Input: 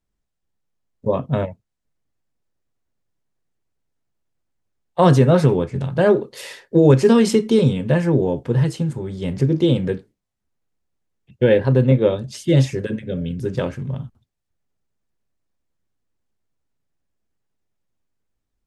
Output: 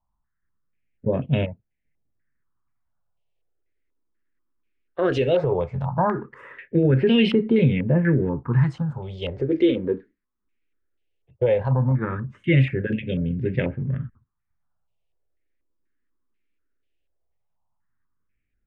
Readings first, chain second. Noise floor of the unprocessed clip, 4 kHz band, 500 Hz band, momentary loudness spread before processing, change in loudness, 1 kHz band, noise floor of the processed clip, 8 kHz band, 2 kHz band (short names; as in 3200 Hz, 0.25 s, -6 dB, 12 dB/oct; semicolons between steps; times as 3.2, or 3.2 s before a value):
-78 dBFS, -1.5 dB, -5.5 dB, 13 LU, -4.5 dB, -4.0 dB, -77 dBFS, under -20 dB, -0.5 dB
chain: limiter -9 dBFS, peak gain reduction 7.5 dB; phaser stages 4, 0.17 Hz, lowest notch 120–1200 Hz; stepped low-pass 4.1 Hz 950–2800 Hz